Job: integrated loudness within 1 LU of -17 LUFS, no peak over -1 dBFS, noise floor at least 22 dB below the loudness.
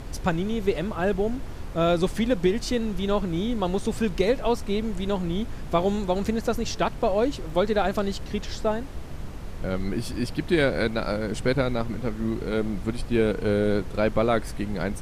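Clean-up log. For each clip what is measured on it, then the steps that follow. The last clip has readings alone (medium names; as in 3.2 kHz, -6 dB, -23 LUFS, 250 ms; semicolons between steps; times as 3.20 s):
noise floor -36 dBFS; noise floor target -48 dBFS; loudness -26.0 LUFS; peak level -8.5 dBFS; loudness target -17.0 LUFS
-> noise print and reduce 12 dB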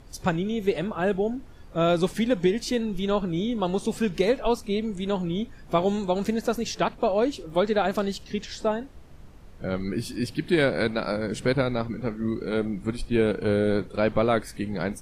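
noise floor -46 dBFS; noise floor target -49 dBFS
-> noise print and reduce 6 dB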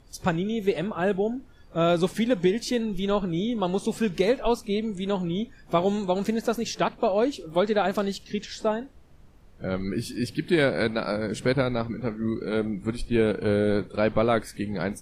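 noise floor -51 dBFS; loudness -26.5 LUFS; peak level -9.0 dBFS; loudness target -17.0 LUFS
-> trim +9.5 dB; peak limiter -1 dBFS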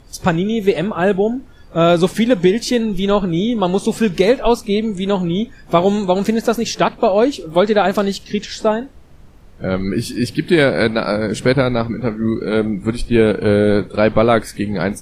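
loudness -17.0 LUFS; peak level -1.0 dBFS; noise floor -42 dBFS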